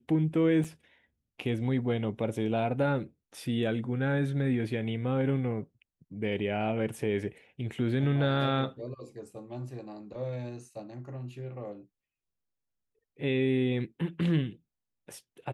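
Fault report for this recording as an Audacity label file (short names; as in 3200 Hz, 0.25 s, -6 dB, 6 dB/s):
0.640000	0.650000	gap 5.5 ms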